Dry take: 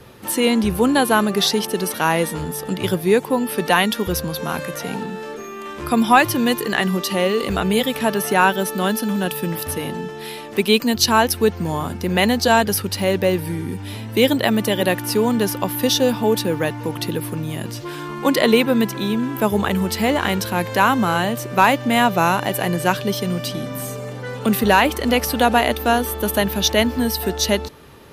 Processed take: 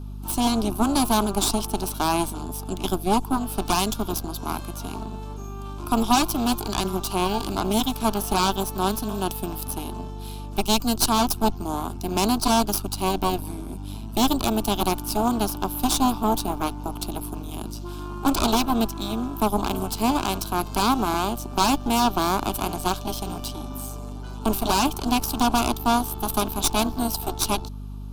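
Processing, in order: added harmonics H 6 -7 dB, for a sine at -1 dBFS; fixed phaser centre 510 Hz, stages 6; hum 50 Hz, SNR 10 dB; gain -6.5 dB

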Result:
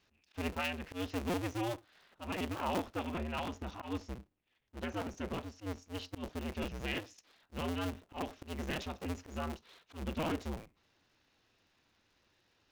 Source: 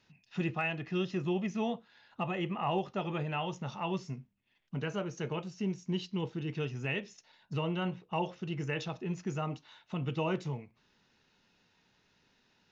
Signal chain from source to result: cycle switcher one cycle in 2, inverted; 3.15–5.82 high shelf 5100 Hz -5 dB; auto swell 0.115 s; gain -3 dB

